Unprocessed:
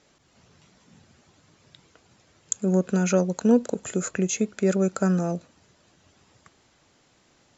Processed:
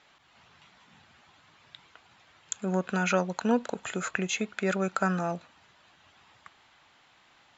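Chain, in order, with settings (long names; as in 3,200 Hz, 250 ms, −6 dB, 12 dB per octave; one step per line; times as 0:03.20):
flat-topped bell 1,700 Hz +12.5 dB 2.8 octaves
level −7.5 dB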